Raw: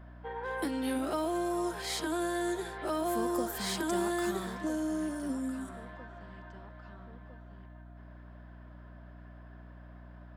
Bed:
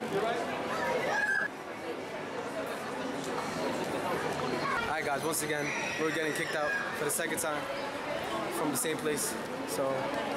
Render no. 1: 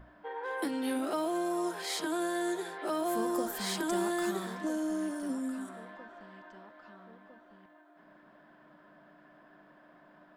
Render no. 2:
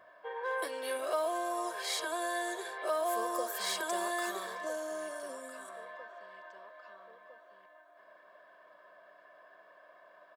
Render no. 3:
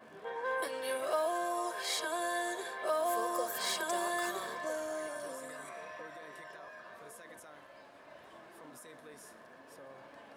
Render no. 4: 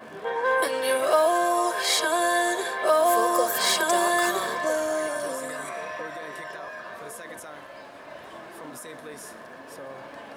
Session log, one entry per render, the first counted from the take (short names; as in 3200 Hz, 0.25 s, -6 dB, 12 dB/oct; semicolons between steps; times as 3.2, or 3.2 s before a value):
notches 60/120/180/240 Hz
Chebyshev high-pass 570 Hz, order 2; comb 1.8 ms, depth 65%
add bed -22 dB
gain +12 dB